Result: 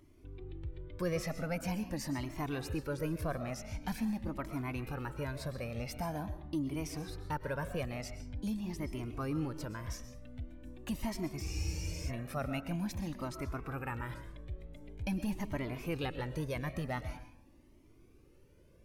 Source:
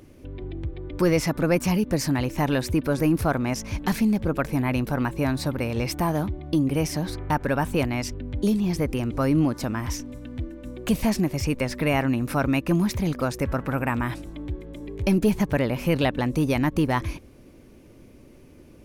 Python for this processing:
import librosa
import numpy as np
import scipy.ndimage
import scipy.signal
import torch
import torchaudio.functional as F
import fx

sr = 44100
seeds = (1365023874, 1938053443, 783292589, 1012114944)

y = fx.rev_freeverb(x, sr, rt60_s=0.65, hf_ratio=0.6, predelay_ms=85, drr_db=10.0)
y = fx.spec_freeze(y, sr, seeds[0], at_s=11.45, hold_s=0.63)
y = fx.comb_cascade(y, sr, direction='rising', hz=0.45)
y = F.gain(torch.from_numpy(y), -9.0).numpy()